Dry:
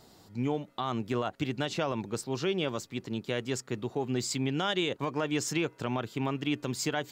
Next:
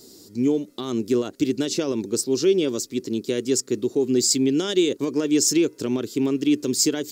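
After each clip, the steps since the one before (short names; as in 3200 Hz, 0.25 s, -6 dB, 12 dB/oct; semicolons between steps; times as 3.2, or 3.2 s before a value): EQ curve 160 Hz 0 dB, 270 Hz +12 dB, 400 Hz +13 dB, 750 Hz -7 dB, 3100 Hz +2 dB, 5200 Hz +15 dB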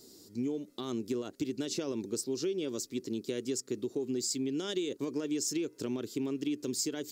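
compressor, threshold -22 dBFS, peak gain reduction 8.5 dB; gain -8 dB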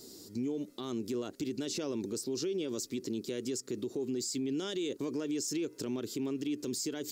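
limiter -32 dBFS, peak gain reduction 10.5 dB; gain +4.5 dB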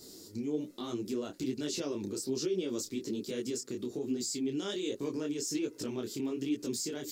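detuned doubles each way 42 cents; gain +4 dB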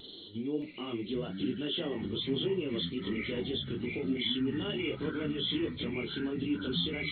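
nonlinear frequency compression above 2700 Hz 4:1; vibrato 1.8 Hz 34 cents; echoes that change speed 0.62 s, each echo -7 st, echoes 3, each echo -6 dB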